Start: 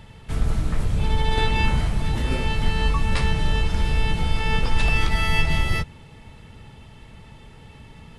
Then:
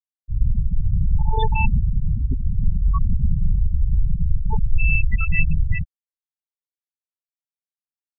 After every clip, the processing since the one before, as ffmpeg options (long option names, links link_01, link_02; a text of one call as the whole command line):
ffmpeg -i in.wav -af "afftfilt=real='re*gte(hypot(re,im),0.316)':imag='im*gte(hypot(re,im),0.316)':win_size=1024:overlap=0.75,volume=3dB" out.wav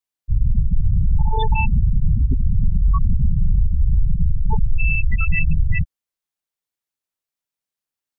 ffmpeg -i in.wav -af "alimiter=limit=-16dB:level=0:latency=1:release=105,volume=7dB" out.wav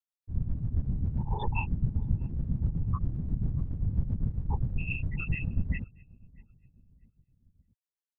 ffmpeg -i in.wav -filter_complex "[0:a]afftfilt=real='hypot(re,im)*cos(2*PI*random(0))':imag='hypot(re,im)*sin(2*PI*random(1))':win_size=512:overlap=0.75,asplit=2[link_01][link_02];[link_02]adelay=631,lowpass=frequency=960:poles=1,volume=-23.5dB,asplit=2[link_03][link_04];[link_04]adelay=631,lowpass=frequency=960:poles=1,volume=0.53,asplit=2[link_05][link_06];[link_06]adelay=631,lowpass=frequency=960:poles=1,volume=0.53[link_07];[link_01][link_03][link_05][link_07]amix=inputs=4:normalize=0,tremolo=f=7.5:d=0.62,volume=-4dB" out.wav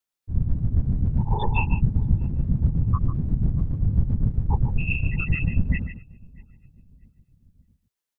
ffmpeg -i in.wav -af "aecho=1:1:147:0.316,volume=7.5dB" out.wav